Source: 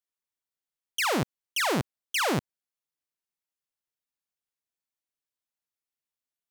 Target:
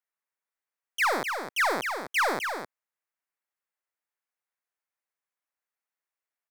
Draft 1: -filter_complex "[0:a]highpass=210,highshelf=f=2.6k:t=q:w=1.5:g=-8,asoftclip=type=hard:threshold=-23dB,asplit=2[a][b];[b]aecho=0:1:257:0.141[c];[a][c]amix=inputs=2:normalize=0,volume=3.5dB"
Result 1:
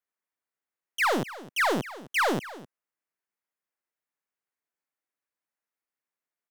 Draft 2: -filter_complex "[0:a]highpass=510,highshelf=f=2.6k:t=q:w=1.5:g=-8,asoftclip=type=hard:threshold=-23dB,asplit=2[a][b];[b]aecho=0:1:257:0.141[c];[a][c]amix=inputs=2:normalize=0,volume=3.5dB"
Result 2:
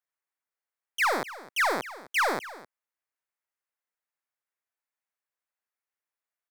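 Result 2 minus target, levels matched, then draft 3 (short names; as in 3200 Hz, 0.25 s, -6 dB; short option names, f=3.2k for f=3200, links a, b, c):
echo-to-direct -10 dB
-filter_complex "[0:a]highpass=510,highshelf=f=2.6k:t=q:w=1.5:g=-8,asoftclip=type=hard:threshold=-23dB,asplit=2[a][b];[b]aecho=0:1:257:0.447[c];[a][c]amix=inputs=2:normalize=0,volume=3.5dB"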